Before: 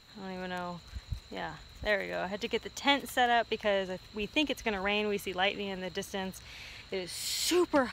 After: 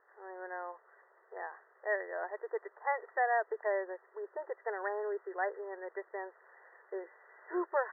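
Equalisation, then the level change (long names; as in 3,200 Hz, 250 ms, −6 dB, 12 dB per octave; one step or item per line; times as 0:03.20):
linear-phase brick-wall band-pass 350–2,000 Hz
−3.0 dB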